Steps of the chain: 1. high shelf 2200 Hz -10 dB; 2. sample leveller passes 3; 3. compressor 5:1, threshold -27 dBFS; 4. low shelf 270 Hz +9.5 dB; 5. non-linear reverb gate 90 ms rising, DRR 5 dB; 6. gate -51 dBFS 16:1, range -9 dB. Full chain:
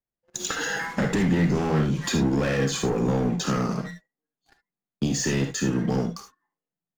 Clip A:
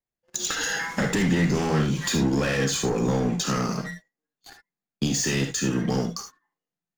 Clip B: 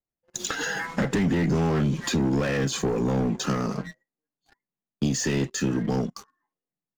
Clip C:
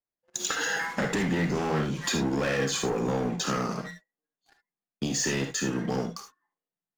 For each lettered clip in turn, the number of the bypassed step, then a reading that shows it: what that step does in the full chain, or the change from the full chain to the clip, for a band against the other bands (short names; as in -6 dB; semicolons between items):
1, 8 kHz band +3.5 dB; 5, momentary loudness spread change -1 LU; 4, 125 Hz band -6.5 dB